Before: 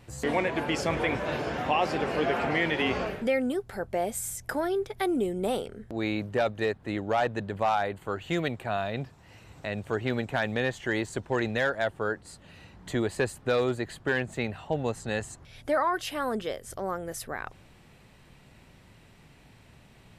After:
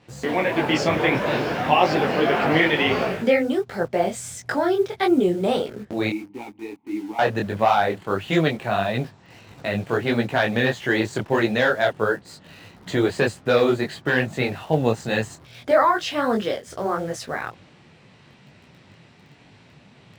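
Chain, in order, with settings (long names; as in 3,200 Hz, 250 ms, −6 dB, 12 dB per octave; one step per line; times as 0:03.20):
0:06.09–0:07.19: formant filter u
automatic gain control gain up to 4 dB
Chebyshev band-pass filter 130–5,200 Hz, order 2
in parallel at −9 dB: bit reduction 7 bits
on the sum: micro pitch shift up and down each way 54 cents
level +5.5 dB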